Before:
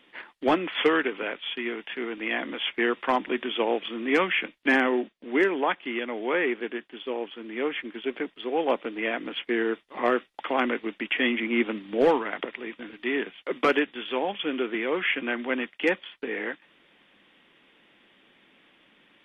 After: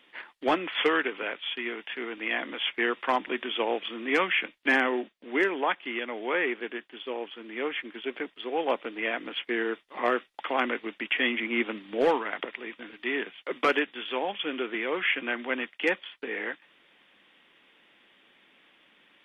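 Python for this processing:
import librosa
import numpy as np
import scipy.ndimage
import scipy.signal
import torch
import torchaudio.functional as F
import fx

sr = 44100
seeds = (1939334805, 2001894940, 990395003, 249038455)

y = fx.low_shelf(x, sr, hz=400.0, db=-7.5)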